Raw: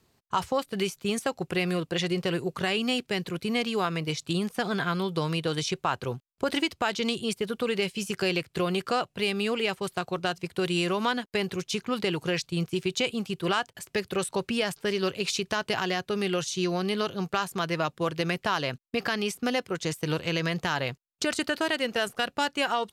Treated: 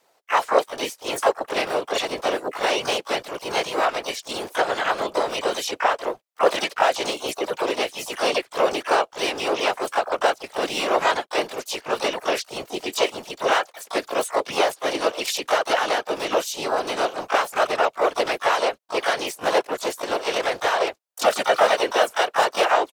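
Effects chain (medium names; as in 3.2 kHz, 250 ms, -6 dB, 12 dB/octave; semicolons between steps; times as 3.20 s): resonant high-pass 600 Hz, resonance Q 3.5; whisper effect; harmony voices -4 st -9 dB, +4 st -6 dB, +12 st -8 dB; trim +1.5 dB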